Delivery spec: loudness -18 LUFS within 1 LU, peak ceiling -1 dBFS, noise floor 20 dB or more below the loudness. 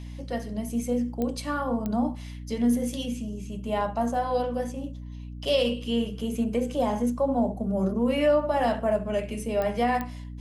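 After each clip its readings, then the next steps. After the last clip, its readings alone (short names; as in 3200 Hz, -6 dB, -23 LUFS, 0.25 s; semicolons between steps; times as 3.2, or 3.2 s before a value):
clicks 4; hum 60 Hz; harmonics up to 300 Hz; hum level -35 dBFS; loudness -27.5 LUFS; peak -13.0 dBFS; loudness target -18.0 LUFS
-> de-click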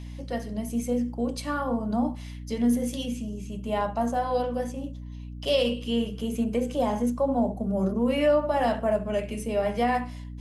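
clicks 0; hum 60 Hz; harmonics up to 300 Hz; hum level -35 dBFS
-> notches 60/120/180/240/300 Hz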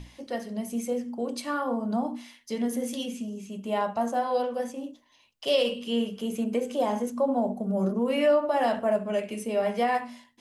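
hum none; loudness -28.5 LUFS; peak -12.5 dBFS; loudness target -18.0 LUFS
-> gain +10.5 dB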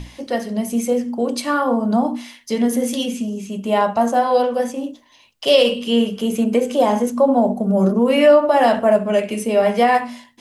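loudness -18.0 LUFS; peak -2.0 dBFS; noise floor -51 dBFS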